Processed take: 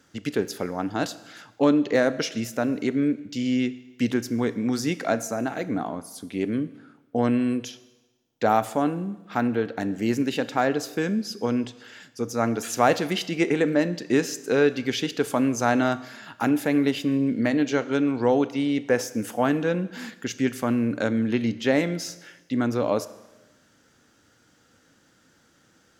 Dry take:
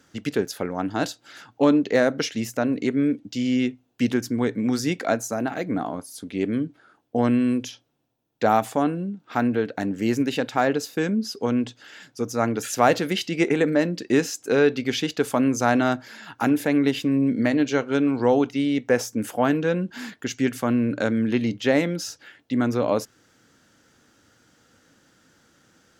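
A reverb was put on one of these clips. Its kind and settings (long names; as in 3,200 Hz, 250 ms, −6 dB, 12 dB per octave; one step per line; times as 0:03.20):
four-comb reverb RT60 1.1 s, combs from 27 ms, DRR 15 dB
level −1.5 dB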